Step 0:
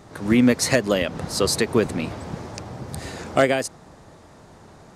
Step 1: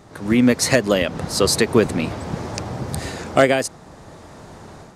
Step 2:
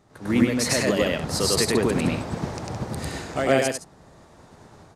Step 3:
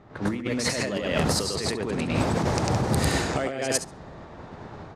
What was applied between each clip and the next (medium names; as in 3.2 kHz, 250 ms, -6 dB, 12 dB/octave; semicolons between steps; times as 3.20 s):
level rider gain up to 7.5 dB
peak limiter -12 dBFS, peak gain reduction 10 dB; loudspeakers at several distances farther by 34 m 0 dB, 57 m -8 dB; upward expansion 1.5:1, over -39 dBFS
compressor with a negative ratio -29 dBFS, ratio -1; level-controlled noise filter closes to 2.5 kHz, open at -22.5 dBFS; flutter echo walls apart 11.9 m, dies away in 0.22 s; trim +3 dB